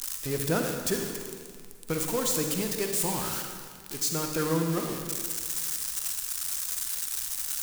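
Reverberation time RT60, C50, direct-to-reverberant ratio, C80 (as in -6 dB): 1.9 s, 3.5 dB, 3.0 dB, 5.0 dB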